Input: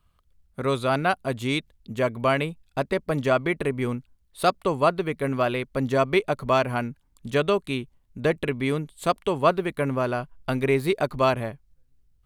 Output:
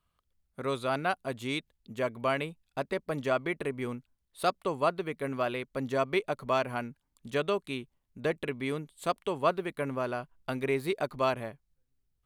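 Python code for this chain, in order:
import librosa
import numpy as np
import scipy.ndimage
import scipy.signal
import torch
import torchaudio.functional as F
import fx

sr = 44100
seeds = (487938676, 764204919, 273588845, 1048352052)

y = fx.low_shelf(x, sr, hz=120.0, db=-9.5)
y = y * librosa.db_to_amplitude(-6.5)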